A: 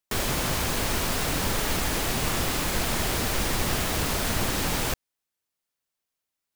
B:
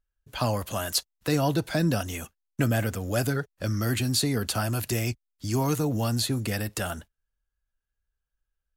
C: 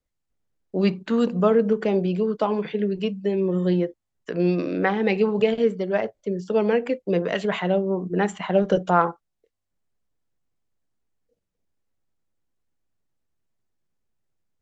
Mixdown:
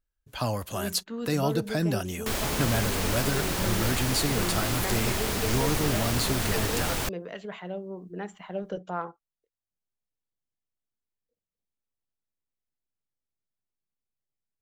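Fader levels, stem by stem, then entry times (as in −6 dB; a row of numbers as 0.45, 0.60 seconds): −2.5, −2.5, −14.0 decibels; 2.15, 0.00, 0.00 seconds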